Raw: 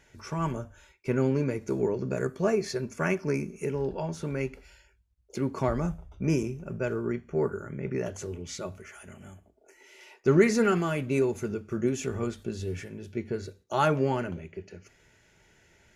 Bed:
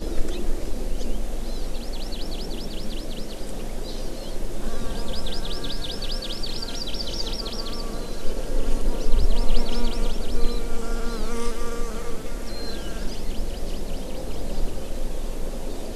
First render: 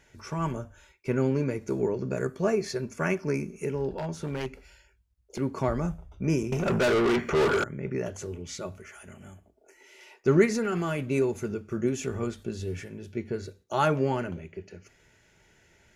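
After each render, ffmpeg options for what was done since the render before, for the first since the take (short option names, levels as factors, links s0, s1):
-filter_complex "[0:a]asettb=1/sr,asplit=3[s0][s1][s2];[s0]atrim=end=3.934[s3];[s1]atrim=start=3.93:end=5.39,asetpts=PTS-STARTPTS,afade=t=in:d=0.004:c=qsin,afade=t=out:st=1.456:d=0.004:c=qsin,aeval=exprs='0.0596*(abs(mod(val(0)/0.0596+3,4)-2)-1)':c=same[s4];[s2]atrim=start=5.386[s5];[s3][s4]acrossfade=d=0.004:c1=hsin:c2=qsin[s6];[s6][s5]acrossfade=d=0.004:c1=qsin:c2=hsin,asettb=1/sr,asplit=3[s7][s8][s9];[s7]atrim=end=6.524[s10];[s8]atrim=start=6.52:end=7.64,asetpts=PTS-STARTPTS,afade=t=in:d=0.004:c=qsin,afade=t=out:st=1.116:d=0.004:c=qsin,asplit=2[s11][s12];[s12]highpass=f=720:p=1,volume=44.7,asoftclip=type=tanh:threshold=0.15[s13];[s11][s13]amix=inputs=2:normalize=0,lowpass=f=5500:p=1,volume=0.501[s14];[s9]atrim=start=7.636[s15];[s10][s14]acrossfade=d=0.004:c1=hsin:c2=qsin[s16];[s16][s15]acrossfade=d=0.004:c1=qsin:c2=hsin,asettb=1/sr,asplit=3[s17][s18][s19];[s17]atrim=end=10.454[s20];[s18]atrim=start=10.45:end=10.99,asetpts=PTS-STARTPTS,afade=t=in:d=0.004:c=qsin,afade=t=out:st=0.536:d=0.004:c=qsin,acompressor=threshold=0.0631:ratio=5:attack=3.2:release=140:knee=1:detection=peak[s21];[s19]atrim=start=10.986[s22];[s20][s21]acrossfade=d=0.004:c1=hsin:c2=qsin[s23];[s23][s22]acrossfade=d=0.004:c1=qsin:c2=hsin"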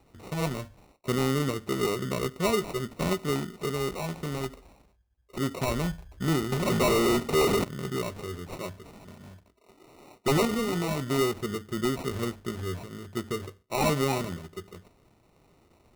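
-af "acrusher=samples=27:mix=1:aa=0.000001,aeval=exprs='0.141*(abs(mod(val(0)/0.141+3,4)-2)-1)':c=same"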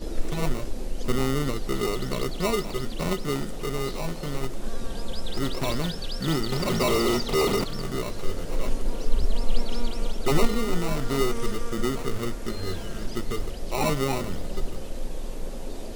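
-filter_complex "[1:a]volume=0.631[s0];[0:a][s0]amix=inputs=2:normalize=0"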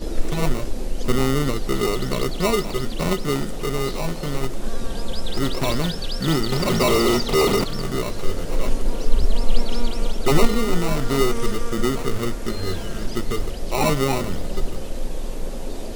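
-af "volume=1.78"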